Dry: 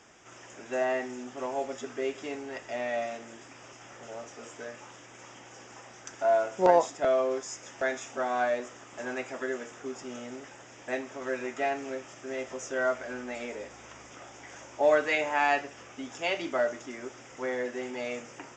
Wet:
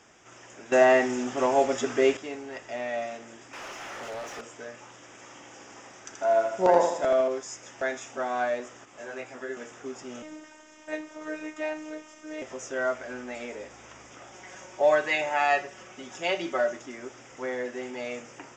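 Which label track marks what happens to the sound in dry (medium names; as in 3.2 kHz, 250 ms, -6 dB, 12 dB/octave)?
0.720000	2.170000	gain +10 dB
3.530000	4.410000	overdrive pedal drive 24 dB, tone 3 kHz, clips at -30 dBFS
4.940000	7.280000	feedback delay 80 ms, feedback 45%, level -5 dB
8.850000	9.570000	detune thickener each way 14 cents
10.220000	12.420000	robot voice 309 Hz
14.320000	16.770000	comb 5.4 ms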